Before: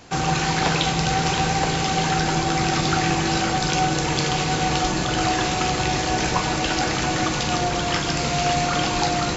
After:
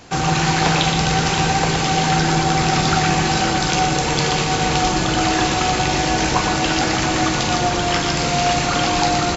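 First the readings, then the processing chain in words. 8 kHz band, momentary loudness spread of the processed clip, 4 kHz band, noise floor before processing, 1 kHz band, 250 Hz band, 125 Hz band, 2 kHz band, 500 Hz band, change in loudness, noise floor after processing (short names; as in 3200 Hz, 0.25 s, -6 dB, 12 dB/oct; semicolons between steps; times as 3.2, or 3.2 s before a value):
n/a, 2 LU, +4.0 dB, -24 dBFS, +4.0 dB, +4.0 dB, +3.5 dB, +4.0 dB, +3.5 dB, +4.0 dB, -20 dBFS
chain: echo 0.119 s -6.5 dB; gain +3 dB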